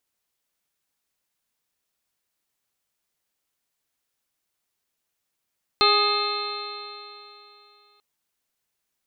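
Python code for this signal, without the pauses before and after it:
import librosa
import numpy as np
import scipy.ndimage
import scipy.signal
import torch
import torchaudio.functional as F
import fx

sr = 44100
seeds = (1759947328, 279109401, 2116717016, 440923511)

y = fx.additive_stiff(sr, length_s=2.19, hz=409.0, level_db=-22.5, upper_db=(-3.5, 4, -15.0, -6.5, -3.5, -13.0, -2.0, 4.0), decay_s=2.95, stiffness=0.0034)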